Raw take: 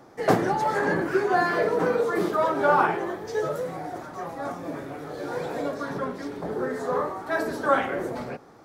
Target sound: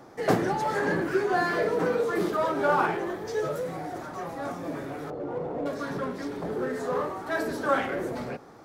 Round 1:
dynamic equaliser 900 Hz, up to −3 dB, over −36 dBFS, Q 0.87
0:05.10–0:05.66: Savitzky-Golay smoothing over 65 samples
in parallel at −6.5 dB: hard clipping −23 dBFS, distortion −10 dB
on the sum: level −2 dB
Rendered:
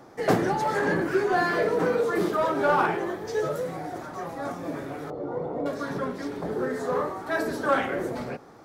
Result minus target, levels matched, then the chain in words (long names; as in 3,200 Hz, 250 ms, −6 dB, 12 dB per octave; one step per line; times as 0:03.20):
hard clipping: distortion −7 dB
dynamic equaliser 900 Hz, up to −3 dB, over −36 dBFS, Q 0.87
0:05.10–0:05.66: Savitzky-Golay smoothing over 65 samples
in parallel at −6.5 dB: hard clipping −34.5 dBFS, distortion −3 dB
on the sum: level −2 dB